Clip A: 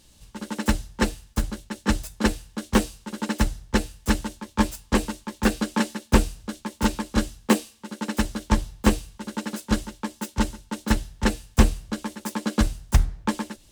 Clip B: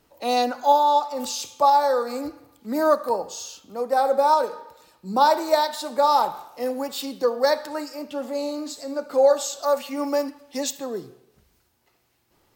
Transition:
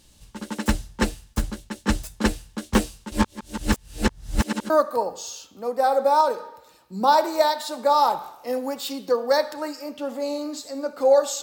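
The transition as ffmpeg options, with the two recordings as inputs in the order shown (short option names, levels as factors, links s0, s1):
-filter_complex "[0:a]apad=whole_dur=11.42,atrim=end=11.42,asplit=2[s0][s1];[s0]atrim=end=3.122[s2];[s1]atrim=start=3.118:end=4.702,asetpts=PTS-STARTPTS,areverse[s3];[1:a]atrim=start=2.828:end=9.55[s4];[s2][s3]acrossfade=d=0.004:c1=hsin:c2=hsin[s5];[s5][s4]acrossfade=d=0.004:c1=hsin:c2=hsin"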